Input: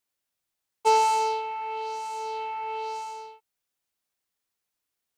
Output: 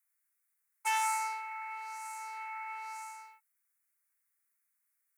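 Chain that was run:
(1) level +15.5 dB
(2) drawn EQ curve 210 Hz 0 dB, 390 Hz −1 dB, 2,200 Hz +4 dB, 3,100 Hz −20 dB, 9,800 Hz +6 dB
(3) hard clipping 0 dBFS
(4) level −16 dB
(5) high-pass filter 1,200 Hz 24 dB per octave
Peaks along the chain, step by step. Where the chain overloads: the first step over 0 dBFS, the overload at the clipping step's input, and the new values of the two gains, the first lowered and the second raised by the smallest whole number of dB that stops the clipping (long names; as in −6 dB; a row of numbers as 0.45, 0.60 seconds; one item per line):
+5.5, +6.0, 0.0, −16.0, −20.0 dBFS
step 1, 6.0 dB
step 1 +9.5 dB, step 4 −10 dB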